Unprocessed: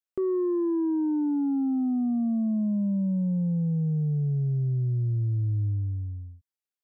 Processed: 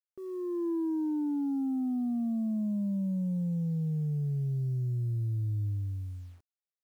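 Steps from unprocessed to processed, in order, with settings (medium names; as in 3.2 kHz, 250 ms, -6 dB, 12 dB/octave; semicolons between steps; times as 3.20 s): fade-in on the opening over 0.69 s; bit crusher 10-bit; trim -5 dB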